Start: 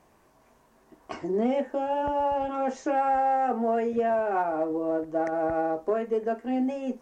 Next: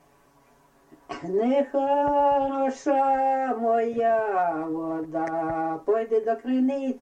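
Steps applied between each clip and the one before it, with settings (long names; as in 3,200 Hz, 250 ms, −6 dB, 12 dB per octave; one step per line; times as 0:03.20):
comb filter 7.1 ms, depth 89%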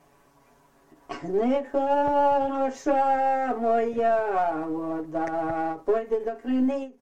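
gain on one half-wave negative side −3 dB
every ending faded ahead of time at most 200 dB per second
level +1 dB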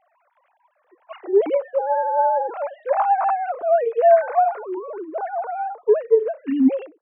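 three sine waves on the formant tracks
level +4.5 dB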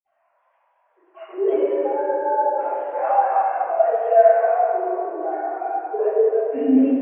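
convolution reverb RT60 2.9 s, pre-delay 47 ms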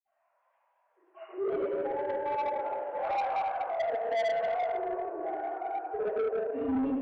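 soft clipping −18 dBFS, distortion −9 dB
level −8 dB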